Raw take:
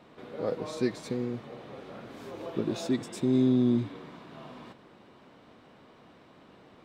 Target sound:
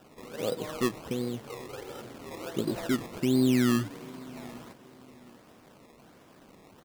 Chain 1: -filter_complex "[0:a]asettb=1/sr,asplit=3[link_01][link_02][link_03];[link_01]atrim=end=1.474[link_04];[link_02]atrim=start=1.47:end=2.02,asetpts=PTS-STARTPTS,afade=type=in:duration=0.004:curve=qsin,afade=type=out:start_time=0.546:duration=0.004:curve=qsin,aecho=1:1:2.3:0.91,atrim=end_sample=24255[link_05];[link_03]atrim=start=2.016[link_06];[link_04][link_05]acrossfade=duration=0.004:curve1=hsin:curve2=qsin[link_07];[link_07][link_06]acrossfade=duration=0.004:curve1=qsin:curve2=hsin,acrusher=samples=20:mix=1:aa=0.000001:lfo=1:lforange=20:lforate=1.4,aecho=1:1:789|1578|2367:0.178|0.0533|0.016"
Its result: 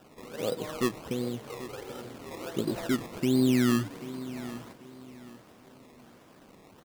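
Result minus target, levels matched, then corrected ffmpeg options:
echo-to-direct +7 dB
-filter_complex "[0:a]asettb=1/sr,asplit=3[link_01][link_02][link_03];[link_01]atrim=end=1.474[link_04];[link_02]atrim=start=1.47:end=2.02,asetpts=PTS-STARTPTS,afade=type=in:duration=0.004:curve=qsin,afade=type=out:start_time=0.546:duration=0.004:curve=qsin,aecho=1:1:2.3:0.91,atrim=end_sample=24255[link_05];[link_03]atrim=start=2.016[link_06];[link_04][link_05]acrossfade=duration=0.004:curve1=hsin:curve2=qsin[link_07];[link_07][link_06]acrossfade=duration=0.004:curve1=qsin:curve2=hsin,acrusher=samples=20:mix=1:aa=0.000001:lfo=1:lforange=20:lforate=1.4,aecho=1:1:789|1578:0.0794|0.0238"

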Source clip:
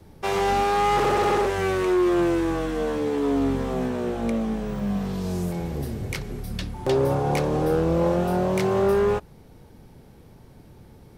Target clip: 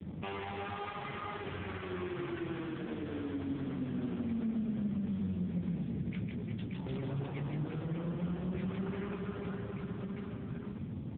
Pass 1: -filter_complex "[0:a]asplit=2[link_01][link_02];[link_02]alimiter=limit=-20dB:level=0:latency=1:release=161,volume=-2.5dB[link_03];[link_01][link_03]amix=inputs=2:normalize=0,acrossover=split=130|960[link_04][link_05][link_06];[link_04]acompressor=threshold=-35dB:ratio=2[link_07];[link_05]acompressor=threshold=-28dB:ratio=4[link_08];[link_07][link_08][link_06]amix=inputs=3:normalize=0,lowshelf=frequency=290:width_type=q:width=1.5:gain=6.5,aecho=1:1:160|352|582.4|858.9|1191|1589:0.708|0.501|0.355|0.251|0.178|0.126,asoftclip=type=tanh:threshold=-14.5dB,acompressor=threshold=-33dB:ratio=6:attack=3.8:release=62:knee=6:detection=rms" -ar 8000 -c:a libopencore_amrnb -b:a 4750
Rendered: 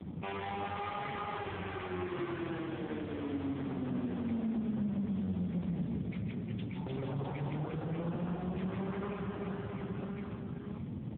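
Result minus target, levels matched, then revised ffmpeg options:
1,000 Hz band +3.0 dB
-filter_complex "[0:a]asplit=2[link_01][link_02];[link_02]alimiter=limit=-20dB:level=0:latency=1:release=161,volume=-2.5dB[link_03];[link_01][link_03]amix=inputs=2:normalize=0,acrossover=split=130|960[link_04][link_05][link_06];[link_04]acompressor=threshold=-35dB:ratio=2[link_07];[link_05]acompressor=threshold=-28dB:ratio=4[link_08];[link_07][link_08][link_06]amix=inputs=3:normalize=0,lowshelf=frequency=290:width_type=q:width=1.5:gain=6.5,aecho=1:1:160|352|582.4|858.9|1191|1589:0.708|0.501|0.355|0.251|0.178|0.126,asoftclip=type=tanh:threshold=-14.5dB,acompressor=threshold=-33dB:ratio=6:attack=3.8:release=62:knee=6:detection=rms,adynamicequalizer=threshold=0.00224:dfrequency=760:dqfactor=1.8:tfrequency=760:tqfactor=1.8:attack=5:release=100:ratio=0.333:range=3:mode=cutabove:tftype=bell" -ar 8000 -c:a libopencore_amrnb -b:a 4750

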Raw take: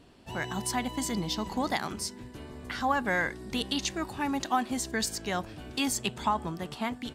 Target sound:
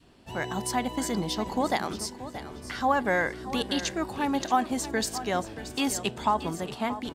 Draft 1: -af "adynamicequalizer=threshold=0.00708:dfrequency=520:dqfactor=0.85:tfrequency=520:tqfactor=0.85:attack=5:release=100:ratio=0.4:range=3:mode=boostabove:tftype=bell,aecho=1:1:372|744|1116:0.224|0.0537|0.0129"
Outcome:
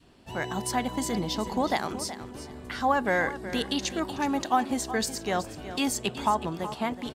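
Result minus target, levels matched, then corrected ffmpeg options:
echo 256 ms early
-af "adynamicequalizer=threshold=0.00708:dfrequency=520:dqfactor=0.85:tfrequency=520:tqfactor=0.85:attack=5:release=100:ratio=0.4:range=3:mode=boostabove:tftype=bell,aecho=1:1:628|1256|1884:0.224|0.0537|0.0129"

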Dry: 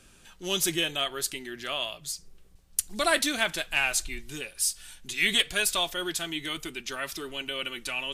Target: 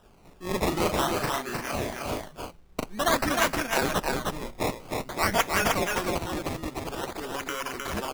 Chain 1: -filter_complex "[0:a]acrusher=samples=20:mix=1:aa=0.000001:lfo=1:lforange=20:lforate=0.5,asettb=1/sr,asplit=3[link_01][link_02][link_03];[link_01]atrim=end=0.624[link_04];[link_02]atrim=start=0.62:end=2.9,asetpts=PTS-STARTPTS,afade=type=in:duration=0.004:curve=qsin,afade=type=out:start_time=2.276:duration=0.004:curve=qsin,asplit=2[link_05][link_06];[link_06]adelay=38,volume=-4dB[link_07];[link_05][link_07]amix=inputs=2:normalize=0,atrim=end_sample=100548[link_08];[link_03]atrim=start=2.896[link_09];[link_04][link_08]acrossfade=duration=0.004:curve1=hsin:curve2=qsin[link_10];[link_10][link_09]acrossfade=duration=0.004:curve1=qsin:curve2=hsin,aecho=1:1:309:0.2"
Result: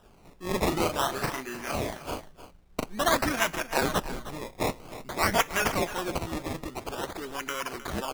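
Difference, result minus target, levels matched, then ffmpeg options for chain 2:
echo-to-direct −11 dB
-filter_complex "[0:a]acrusher=samples=20:mix=1:aa=0.000001:lfo=1:lforange=20:lforate=0.5,asettb=1/sr,asplit=3[link_01][link_02][link_03];[link_01]atrim=end=0.624[link_04];[link_02]atrim=start=0.62:end=2.9,asetpts=PTS-STARTPTS,afade=type=in:duration=0.004:curve=qsin,afade=type=out:start_time=2.276:duration=0.004:curve=qsin,asplit=2[link_05][link_06];[link_06]adelay=38,volume=-4dB[link_07];[link_05][link_07]amix=inputs=2:normalize=0,atrim=end_sample=100548[link_08];[link_03]atrim=start=2.896[link_09];[link_04][link_08]acrossfade=duration=0.004:curve1=hsin:curve2=qsin[link_10];[link_10][link_09]acrossfade=duration=0.004:curve1=qsin:curve2=hsin,aecho=1:1:309:0.708"

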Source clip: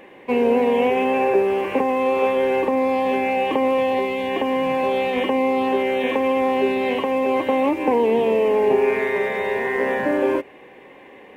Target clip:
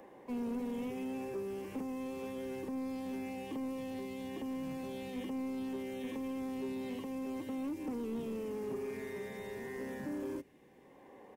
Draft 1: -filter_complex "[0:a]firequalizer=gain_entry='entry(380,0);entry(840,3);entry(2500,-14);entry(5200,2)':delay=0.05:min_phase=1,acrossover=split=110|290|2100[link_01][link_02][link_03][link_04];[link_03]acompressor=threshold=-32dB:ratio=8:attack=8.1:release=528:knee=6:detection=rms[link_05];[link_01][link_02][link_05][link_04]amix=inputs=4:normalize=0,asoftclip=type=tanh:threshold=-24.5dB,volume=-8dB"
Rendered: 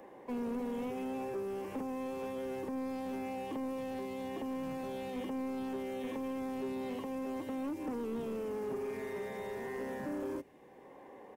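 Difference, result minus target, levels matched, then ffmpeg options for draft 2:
downward compressor: peak gain reduction −9.5 dB
-filter_complex "[0:a]firequalizer=gain_entry='entry(380,0);entry(840,3);entry(2500,-14);entry(5200,2)':delay=0.05:min_phase=1,acrossover=split=110|290|2100[link_01][link_02][link_03][link_04];[link_03]acompressor=threshold=-43dB:ratio=8:attack=8.1:release=528:knee=6:detection=rms[link_05];[link_01][link_02][link_05][link_04]amix=inputs=4:normalize=0,asoftclip=type=tanh:threshold=-24.5dB,volume=-8dB"

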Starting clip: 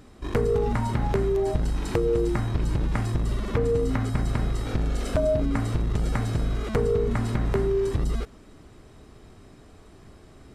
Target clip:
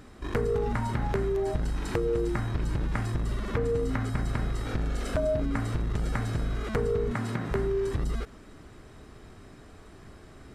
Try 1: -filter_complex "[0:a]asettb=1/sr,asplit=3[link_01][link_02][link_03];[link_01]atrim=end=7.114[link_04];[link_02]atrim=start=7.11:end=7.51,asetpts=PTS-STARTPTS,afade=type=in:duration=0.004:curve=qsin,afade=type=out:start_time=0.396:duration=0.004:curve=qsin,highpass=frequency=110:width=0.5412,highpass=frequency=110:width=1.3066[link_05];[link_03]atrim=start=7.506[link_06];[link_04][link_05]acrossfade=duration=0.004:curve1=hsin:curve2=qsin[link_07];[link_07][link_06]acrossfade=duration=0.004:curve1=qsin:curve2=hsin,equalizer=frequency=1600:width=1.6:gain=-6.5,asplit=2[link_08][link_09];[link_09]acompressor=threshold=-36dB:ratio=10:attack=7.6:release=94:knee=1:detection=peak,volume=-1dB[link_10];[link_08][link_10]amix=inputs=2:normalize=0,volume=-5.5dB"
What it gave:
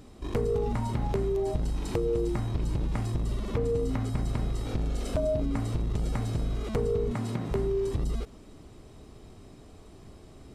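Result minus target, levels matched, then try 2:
2,000 Hz band −8.0 dB
-filter_complex "[0:a]asettb=1/sr,asplit=3[link_01][link_02][link_03];[link_01]atrim=end=7.114[link_04];[link_02]atrim=start=7.11:end=7.51,asetpts=PTS-STARTPTS,afade=type=in:duration=0.004:curve=qsin,afade=type=out:start_time=0.396:duration=0.004:curve=qsin,highpass=frequency=110:width=0.5412,highpass=frequency=110:width=1.3066[link_05];[link_03]atrim=start=7.506[link_06];[link_04][link_05]acrossfade=duration=0.004:curve1=hsin:curve2=qsin[link_07];[link_07][link_06]acrossfade=duration=0.004:curve1=qsin:curve2=hsin,equalizer=frequency=1600:width=1.6:gain=4.5,asplit=2[link_08][link_09];[link_09]acompressor=threshold=-36dB:ratio=10:attack=7.6:release=94:knee=1:detection=peak,volume=-1dB[link_10];[link_08][link_10]amix=inputs=2:normalize=0,volume=-5.5dB"

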